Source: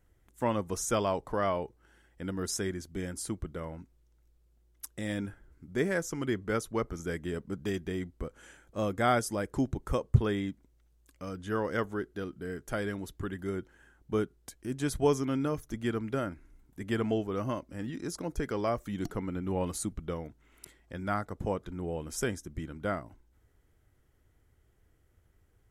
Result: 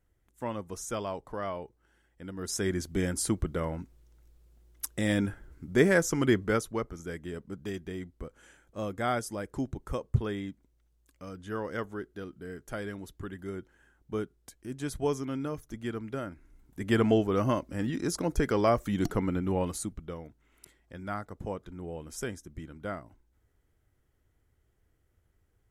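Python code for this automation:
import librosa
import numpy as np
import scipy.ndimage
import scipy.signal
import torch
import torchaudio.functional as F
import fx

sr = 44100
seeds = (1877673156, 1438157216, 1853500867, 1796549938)

y = fx.gain(x, sr, db=fx.line((2.33, -5.5), (2.78, 7.0), (6.34, 7.0), (6.92, -3.5), (16.3, -3.5), (16.97, 6.0), (19.28, 6.0), (20.08, -4.0)))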